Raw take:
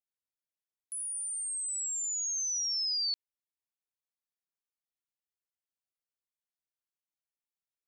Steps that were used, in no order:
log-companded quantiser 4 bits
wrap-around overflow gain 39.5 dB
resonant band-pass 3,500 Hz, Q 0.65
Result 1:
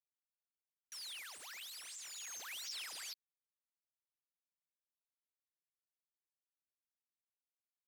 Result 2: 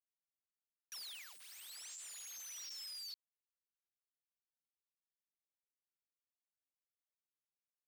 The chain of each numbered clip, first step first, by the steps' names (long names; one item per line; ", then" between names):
wrap-around overflow, then log-companded quantiser, then resonant band-pass
log-companded quantiser, then wrap-around overflow, then resonant band-pass